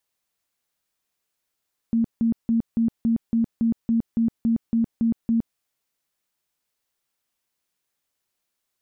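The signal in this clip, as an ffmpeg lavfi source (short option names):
-f lavfi -i "aevalsrc='0.141*sin(2*PI*229*mod(t,0.28))*lt(mod(t,0.28),26/229)':d=3.64:s=44100"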